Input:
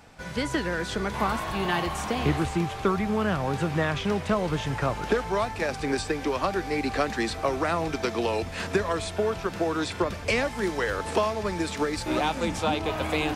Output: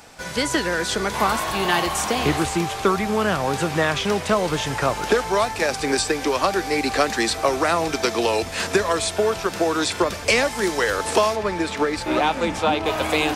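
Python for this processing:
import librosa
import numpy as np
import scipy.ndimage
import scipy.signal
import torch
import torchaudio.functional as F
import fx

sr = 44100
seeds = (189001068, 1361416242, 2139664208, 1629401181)

y = fx.bass_treble(x, sr, bass_db=-7, treble_db=fx.steps((0.0, 7.0), (11.35, -5.0), (12.85, 4.0)))
y = F.gain(torch.from_numpy(y), 6.5).numpy()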